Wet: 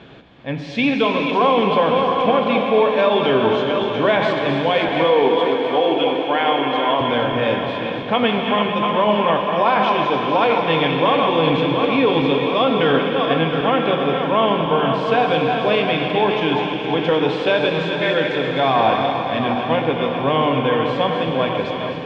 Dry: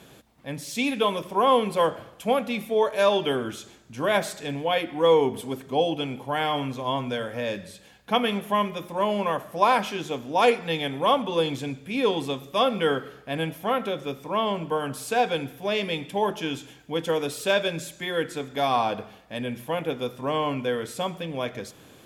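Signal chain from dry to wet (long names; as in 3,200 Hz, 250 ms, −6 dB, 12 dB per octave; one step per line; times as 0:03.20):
feedback delay that plays each chunk backwards 349 ms, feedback 69%, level −8.5 dB
0:05.04–0:07.01: high-pass filter 300 Hz 12 dB per octave
brickwall limiter −16 dBFS, peak gain reduction 10 dB
low-pass filter 3,600 Hz 24 dB per octave
delay with a high-pass on its return 258 ms, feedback 61%, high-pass 2,700 Hz, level −8 dB
reverb whose tail is shaped and stops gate 480 ms flat, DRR 3.5 dB
level +8 dB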